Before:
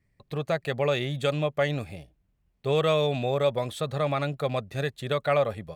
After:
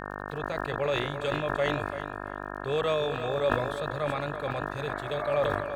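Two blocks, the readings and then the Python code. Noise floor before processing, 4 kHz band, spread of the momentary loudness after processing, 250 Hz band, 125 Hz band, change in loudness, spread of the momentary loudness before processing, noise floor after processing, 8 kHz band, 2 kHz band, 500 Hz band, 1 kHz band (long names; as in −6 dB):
−72 dBFS, −3.5 dB, 9 LU, −3.0 dB, −6.0 dB, −3.0 dB, 10 LU, −38 dBFS, can't be measured, +2.0 dB, −2.5 dB, +1.0 dB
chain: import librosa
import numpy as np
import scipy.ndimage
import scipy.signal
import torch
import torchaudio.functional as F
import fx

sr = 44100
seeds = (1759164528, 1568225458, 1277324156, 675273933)

p1 = fx.spec_repair(x, sr, seeds[0], start_s=4.83, length_s=0.51, low_hz=600.0, high_hz=2300.0, source='both')
p2 = fx.peak_eq(p1, sr, hz=190.0, db=-11.5, octaves=0.88)
p3 = fx.notch(p2, sr, hz=670.0, q=19.0)
p4 = fx.hpss(p3, sr, part='harmonic', gain_db=4)
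p5 = fx.high_shelf(p4, sr, hz=8500.0, db=-3.5)
p6 = fx.transient(p5, sr, attack_db=1, sustain_db=-5)
p7 = fx.dmg_buzz(p6, sr, base_hz=50.0, harmonics=36, level_db=-34.0, tilt_db=0, odd_only=False)
p8 = fx.dmg_crackle(p7, sr, seeds[1], per_s=45.0, level_db=-40.0)
p9 = p8 + fx.echo_feedback(p8, sr, ms=337, feedback_pct=21, wet_db=-10, dry=0)
p10 = fx.sustainer(p9, sr, db_per_s=41.0)
y = F.gain(torch.from_numpy(p10), -6.5).numpy()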